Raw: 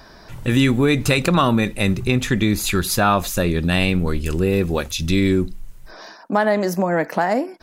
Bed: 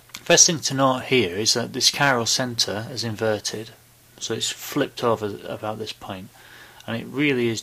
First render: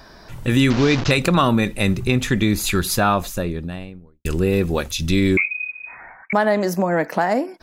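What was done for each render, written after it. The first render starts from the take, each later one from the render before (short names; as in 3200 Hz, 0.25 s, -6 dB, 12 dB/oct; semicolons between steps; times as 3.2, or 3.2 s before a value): 0.7–1.11 delta modulation 32 kbps, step -18.5 dBFS; 2.84–4.25 studio fade out; 5.37–6.33 inverted band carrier 2500 Hz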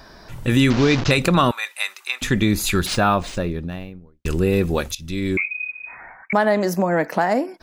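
1.51–2.22 HPF 940 Hz 24 dB/oct; 2.86–4.28 decimation joined by straight lines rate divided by 3×; 4.95–5.69 fade in, from -16.5 dB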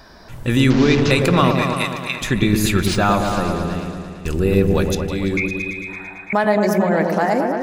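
repeats that get brighter 0.112 s, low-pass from 750 Hz, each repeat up 1 oct, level -3 dB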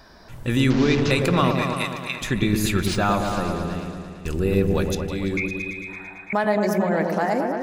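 gain -4.5 dB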